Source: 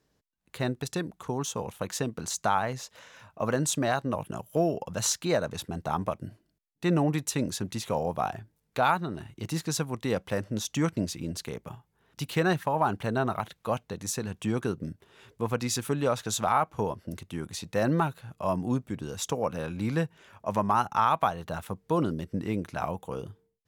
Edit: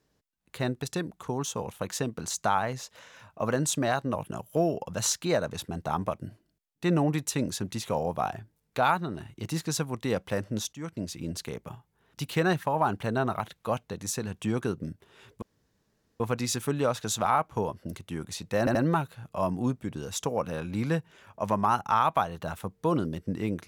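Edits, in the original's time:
10.73–11.29 s: fade in, from -18.5 dB
15.42 s: insert room tone 0.78 s
17.81 s: stutter 0.08 s, 3 plays

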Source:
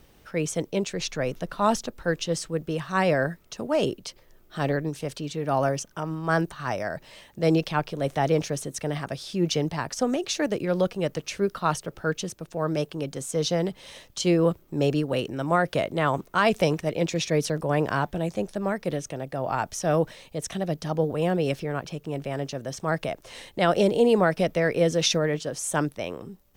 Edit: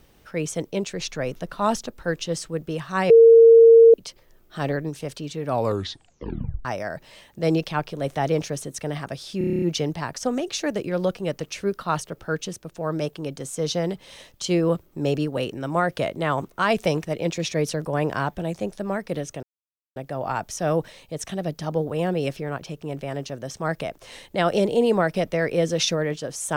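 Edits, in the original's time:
3.10–3.94 s: bleep 458 Hz -7 dBFS
5.44 s: tape stop 1.21 s
9.38 s: stutter 0.03 s, 9 plays
19.19 s: insert silence 0.53 s

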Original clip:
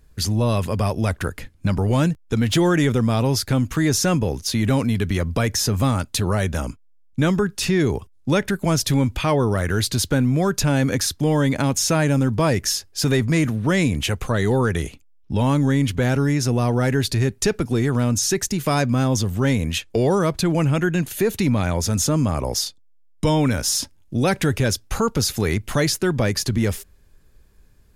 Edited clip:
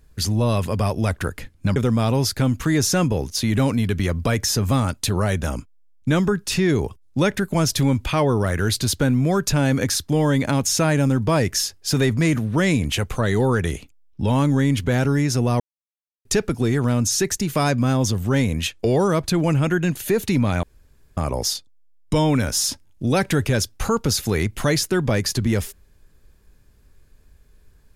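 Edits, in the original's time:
1.76–2.87 s: delete
16.71–17.36 s: mute
21.74–22.28 s: room tone

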